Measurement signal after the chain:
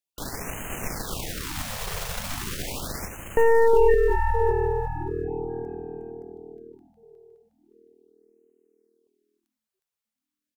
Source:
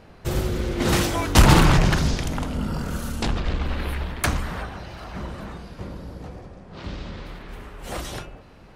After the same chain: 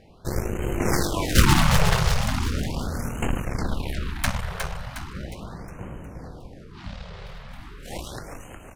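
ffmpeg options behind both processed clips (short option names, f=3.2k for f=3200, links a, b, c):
-filter_complex "[0:a]aeval=exprs='0.668*(cos(1*acos(clip(val(0)/0.668,-1,1)))-cos(1*PI/2))+0.188*(cos(3*acos(clip(val(0)/0.668,-1,1)))-cos(3*PI/2))+0.0668*(cos(5*acos(clip(val(0)/0.668,-1,1)))-cos(5*PI/2))+0.00422*(cos(6*acos(clip(val(0)/0.668,-1,1)))-cos(6*PI/2))+0.075*(cos(8*acos(clip(val(0)/0.668,-1,1)))-cos(8*PI/2))':c=same,asplit=7[a][b][c][d][e][f][g];[b]adelay=361,afreqshift=-40,volume=-6dB[h];[c]adelay=722,afreqshift=-80,volume=-12.2dB[i];[d]adelay=1083,afreqshift=-120,volume=-18.4dB[j];[e]adelay=1444,afreqshift=-160,volume=-24.6dB[k];[f]adelay=1805,afreqshift=-200,volume=-30.8dB[l];[g]adelay=2166,afreqshift=-240,volume=-37dB[m];[a][h][i][j][k][l][m]amix=inputs=7:normalize=0,afftfilt=real='re*(1-between(b*sr/1024,260*pow(4500/260,0.5+0.5*sin(2*PI*0.38*pts/sr))/1.41,260*pow(4500/260,0.5+0.5*sin(2*PI*0.38*pts/sr))*1.41))':imag='im*(1-between(b*sr/1024,260*pow(4500/260,0.5+0.5*sin(2*PI*0.38*pts/sr))/1.41,260*pow(4500/260,0.5+0.5*sin(2*PI*0.38*pts/sr))*1.41))':win_size=1024:overlap=0.75"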